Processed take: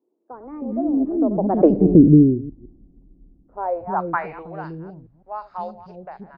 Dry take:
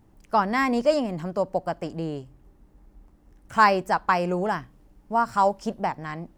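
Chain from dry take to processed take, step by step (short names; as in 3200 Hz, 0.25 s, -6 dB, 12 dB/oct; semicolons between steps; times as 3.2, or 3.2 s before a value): reverse delay 0.145 s, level -14 dB; Doppler pass-by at 1.64, 37 m/s, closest 2.1 m; low-pass sweep 330 Hz -> 4600 Hz, 3.47–4.58; three bands offset in time mids, highs, lows 40/320 ms, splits 430/2800 Hz; low-pass opened by the level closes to 1600 Hz, open at -36.5 dBFS; maximiser +28 dB; gain -1 dB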